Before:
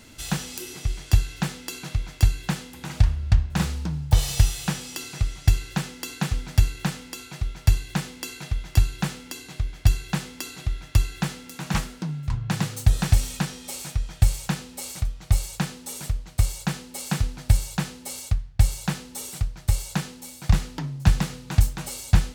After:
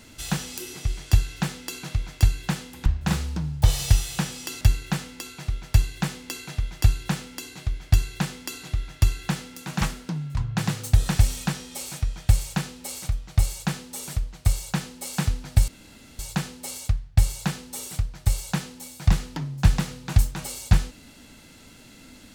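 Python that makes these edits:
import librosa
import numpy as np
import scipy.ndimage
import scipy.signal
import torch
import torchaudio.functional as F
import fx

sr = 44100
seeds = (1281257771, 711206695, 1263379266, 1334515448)

y = fx.edit(x, sr, fx.cut(start_s=2.86, length_s=0.49),
    fx.cut(start_s=5.1, length_s=1.44),
    fx.insert_room_tone(at_s=17.61, length_s=0.51), tone=tone)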